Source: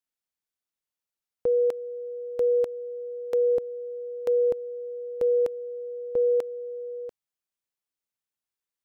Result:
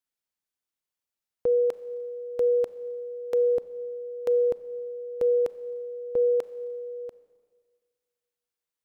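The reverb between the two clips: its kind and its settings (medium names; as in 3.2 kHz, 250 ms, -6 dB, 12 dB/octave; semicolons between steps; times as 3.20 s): Schroeder reverb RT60 1.8 s, combs from 29 ms, DRR 15.5 dB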